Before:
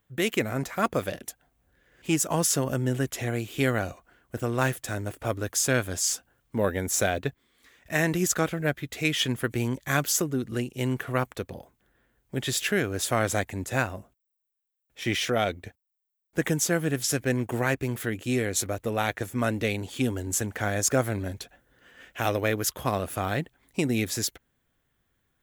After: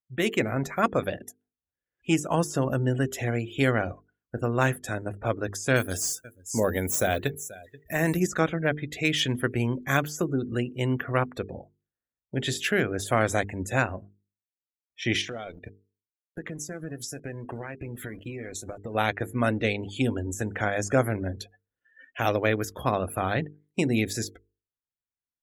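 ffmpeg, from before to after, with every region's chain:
-filter_complex "[0:a]asettb=1/sr,asplit=3[s0][s1][s2];[s0]atrim=end=5.764[s3];[s1]atrim=start=5.76:end=8.2,asetpts=PTS-STARTPTS,afade=t=in:d=0.004:c=qsin,afade=t=out:st=2.436:d=0.004:c=qsin,aemphasis=mode=production:type=75kf,aecho=1:1:483:0.1,atrim=end_sample=107604[s4];[s2]atrim=start=8.196[s5];[s3][s4]acrossfade=d=0.004:c1=hsin:c2=qsin[s6];[s6][s5]acrossfade=d=0.004:c1=qsin:c2=hsin,asettb=1/sr,asplit=3[s7][s8][s9];[s7]atrim=end=15.214[s10];[s8]atrim=start=15.21:end=18.95,asetpts=PTS-STARTPTS,afade=t=in:d=0.004:c=qsin,afade=t=out:st=3.736:d=0.004:c=qsin,acompressor=threshold=0.0251:ratio=20:attack=3.2:release=140:knee=1:detection=peak,aeval=exprs='val(0)*gte(abs(val(0)),0.0075)':c=same[s11];[s9]atrim=start=18.946[s12];[s10][s11]acrossfade=d=0.004:c1=hsin:c2=qsin[s13];[s13][s12]acrossfade=d=0.004:c1=qsin:c2=hsin,deesser=0.55,afftdn=nr=32:nf=-43,bandreject=f=50:t=h:w=6,bandreject=f=100:t=h:w=6,bandreject=f=150:t=h:w=6,bandreject=f=200:t=h:w=6,bandreject=f=250:t=h:w=6,bandreject=f=300:t=h:w=6,bandreject=f=350:t=h:w=6,bandreject=f=400:t=h:w=6,bandreject=f=450:t=h:w=6,volume=1.26"

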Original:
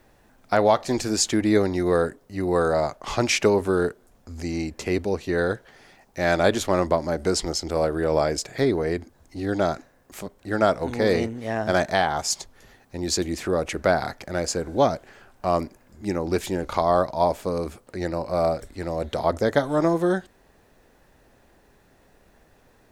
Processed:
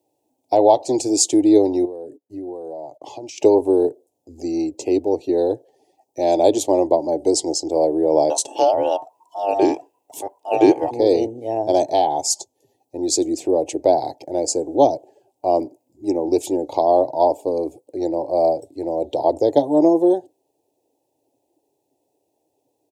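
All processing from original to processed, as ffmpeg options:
-filter_complex "[0:a]asettb=1/sr,asplit=3[s0][s1][s2];[s0]atrim=end=1.854[s3];[s1]atrim=start=1.85:end=3.38,asetpts=PTS-STARTPTS,afade=t=in:d=0.004:c=qsin,afade=t=out:st=1.526:d=0.004:c=qsin,agate=range=0.141:threshold=0.00398:ratio=16:release=100:detection=peak,acompressor=threshold=0.0251:ratio=16:attack=3.2:release=140:knee=1:detection=peak[s4];[s2]atrim=start=3.376[s5];[s3][s4]acrossfade=d=0.004:c1=hsin:c2=qsin[s6];[s6][s5]acrossfade=d=0.004:c1=qsin:c2=hsin,asettb=1/sr,asplit=3[s7][s8][s9];[s7]atrim=end=8.304[s10];[s8]atrim=start=8.3:end=10.91,asetpts=PTS-STARTPTS,afade=t=in:d=0.004:c=qsin,afade=t=out:st=2.606:d=0.004:c=qsin,equalizer=f=950:w=3.4:g=5.5,acontrast=49,aeval=exprs='val(0)*sin(2*PI*990*n/s)':c=same[s11];[s9]atrim=start=10.906[s12];[s10][s11]acrossfade=d=0.004:c1=hsin:c2=qsin[s13];[s13][s12]acrossfade=d=0.004:c1=qsin:c2=hsin,highpass=f=100:w=0.5412,highpass=f=100:w=1.3066,afftdn=nr=16:nf=-43,firequalizer=gain_entry='entry(140,0);entry(200,-14);entry(290,13);entry(420,9);entry(880,9);entry(1300,-28);entry(2600,0);entry(7500,11)':delay=0.05:min_phase=1,volume=0.668"

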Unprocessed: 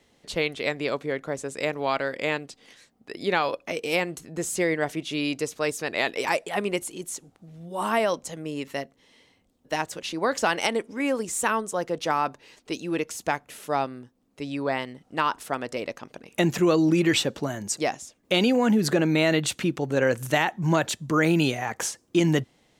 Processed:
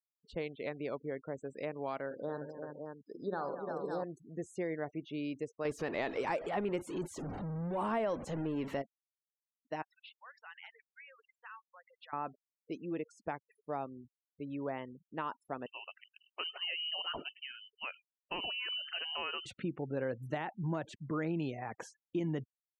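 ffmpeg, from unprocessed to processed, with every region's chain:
-filter_complex "[0:a]asettb=1/sr,asplit=3[s0][s1][s2];[s0]atrim=end=2.064[s3];[s1]atrim=start=2.06:end=4.04,asetpts=PTS-STARTPTS,afade=t=in:d=0.004:c=qsin,afade=t=out:st=1.976:d=0.004:c=qsin,asuperstop=centerf=2500:order=8:qfactor=1.2,aecho=1:1:48|135|227|350|423|559:0.355|0.133|0.237|0.398|0.1|0.447,atrim=end_sample=87318[s4];[s2]atrim=start=4.036[s5];[s3][s4]acrossfade=d=0.004:c1=hsin:c2=qsin[s6];[s6][s5]acrossfade=d=0.004:c1=qsin:c2=hsin,asettb=1/sr,asplit=3[s7][s8][s9];[s7]atrim=end=5.654[s10];[s8]atrim=start=5.65:end=8.82,asetpts=PTS-STARTPTS,afade=t=in:d=0.004:c=qsin,afade=t=out:st=3.166:d=0.004:c=qsin,aeval=exprs='val(0)+0.5*0.0299*sgn(val(0))':c=same,acontrast=24[s11];[s9]atrim=start=8.816[s12];[s10][s11]acrossfade=d=0.004:c1=hsin:c2=qsin[s13];[s13][s12]acrossfade=d=0.004:c1=qsin:c2=hsin,asettb=1/sr,asplit=3[s14][s15][s16];[s14]atrim=end=9.824[s17];[s15]atrim=start=9.82:end=12.13,asetpts=PTS-STARTPTS,afade=t=in:d=0.004:c=qsin,afade=t=out:st=2.306:d=0.004:c=qsin,acompressor=threshold=0.0501:ratio=8:attack=3.2:release=140:knee=1:detection=peak,asuperpass=centerf=2300:order=4:qfactor=0.82[s18];[s16]atrim=start=12.126[s19];[s17][s18]acrossfade=d=0.004:c1=hsin:c2=qsin[s20];[s20][s19]acrossfade=d=0.004:c1=qsin:c2=hsin,asettb=1/sr,asplit=3[s21][s22][s23];[s21]atrim=end=15.664[s24];[s22]atrim=start=15.66:end=19.46,asetpts=PTS-STARTPTS,afade=t=in:d=0.004:c=qsin,afade=t=out:st=3.796:d=0.004:c=qsin,aecho=1:1:101:0.0668,atrim=end_sample=167580,lowpass=f=2700:t=q:w=0.5098,lowpass=f=2700:t=q:w=0.6013,lowpass=f=2700:t=q:w=0.9,lowpass=f=2700:t=q:w=2.563,afreqshift=-3200[s25];[s23]atrim=start=19.456[s26];[s24][s25]acrossfade=d=0.004:c1=hsin:c2=qsin[s27];[s27][s26]acrossfade=d=0.004:c1=qsin:c2=hsin,afftfilt=real='re*gte(hypot(re,im),0.02)':imag='im*gte(hypot(re,im),0.02)':win_size=1024:overlap=0.75,lowpass=f=1000:p=1,acompressor=threshold=0.0501:ratio=2,volume=0.376"

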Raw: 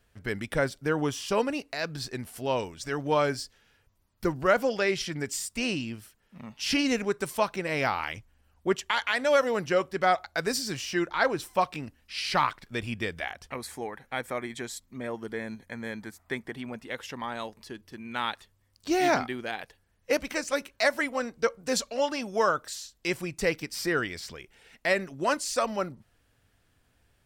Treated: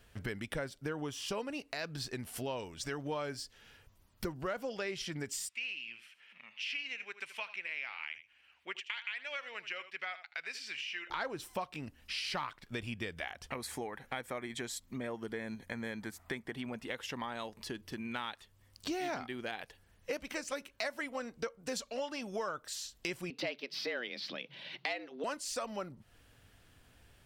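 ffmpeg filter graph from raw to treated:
-filter_complex "[0:a]asettb=1/sr,asplit=3[s0][s1][s2];[s0]atrim=end=5.494[s3];[s1]atrim=start=5.49:end=11.1,asetpts=PTS-STARTPTS,afade=t=in:d=0.004:c=qsin,afade=t=out:st=5.606:d=0.004:c=qsin,acompressor=mode=upward:threshold=0.00794:ratio=2.5:attack=3.2:release=140:knee=2.83:detection=peak,bandpass=f=2400:t=q:w=3.4,aecho=1:1:78:0.178,atrim=end_sample=247401[s4];[s2]atrim=start=11.096[s5];[s3][s4]acrossfade=d=0.004:c1=hsin:c2=qsin[s6];[s6][s5]acrossfade=d=0.004:c1=qsin:c2=hsin,asettb=1/sr,asplit=3[s7][s8][s9];[s7]atrim=end=23.304[s10];[s8]atrim=start=23.3:end=25.24,asetpts=PTS-STARTPTS,afade=t=in:d=0.004:c=qsin,afade=t=out:st=1.936:d=0.004:c=qsin,highshelf=f=5600:t=q:w=3:g=-13.5,afreqshift=120[s11];[s9]atrim=start=25.236[s12];[s10][s11]acrossfade=d=0.004:c1=hsin:c2=qsin[s13];[s13][s12]acrossfade=d=0.004:c1=qsin:c2=hsin,acontrast=88,equalizer=f=3000:t=o:w=0.56:g=3,acompressor=threshold=0.0158:ratio=4,volume=0.75"

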